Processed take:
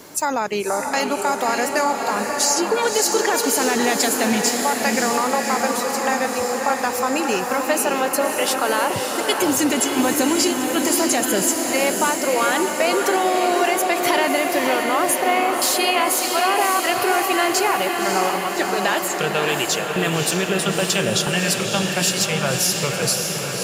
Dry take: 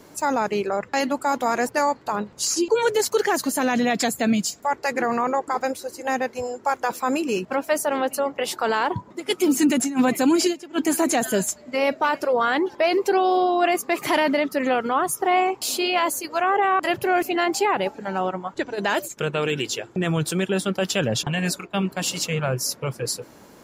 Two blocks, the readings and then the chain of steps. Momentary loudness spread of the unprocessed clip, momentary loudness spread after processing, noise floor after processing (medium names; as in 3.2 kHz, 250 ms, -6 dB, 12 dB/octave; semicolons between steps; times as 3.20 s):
7 LU, 3 LU, -25 dBFS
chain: tilt EQ +1.5 dB/octave; compression 2:1, threshold -28 dBFS, peak gain reduction 7 dB; on a send: echo that smears into a reverb 585 ms, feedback 68%, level -4 dB; on the sum: trim +6.5 dB